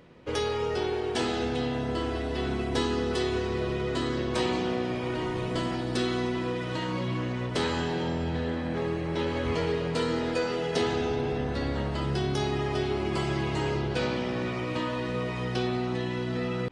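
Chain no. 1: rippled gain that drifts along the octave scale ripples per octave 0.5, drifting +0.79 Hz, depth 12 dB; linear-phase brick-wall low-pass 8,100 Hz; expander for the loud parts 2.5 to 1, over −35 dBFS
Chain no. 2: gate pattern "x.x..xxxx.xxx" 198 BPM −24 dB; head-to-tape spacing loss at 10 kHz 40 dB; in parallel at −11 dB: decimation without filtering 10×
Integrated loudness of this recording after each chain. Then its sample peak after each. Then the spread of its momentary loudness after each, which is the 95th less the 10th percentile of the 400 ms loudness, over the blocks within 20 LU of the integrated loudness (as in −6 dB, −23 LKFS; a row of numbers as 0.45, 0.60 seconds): −33.5, −31.0 LKFS; −14.5, −13.5 dBFS; 10, 4 LU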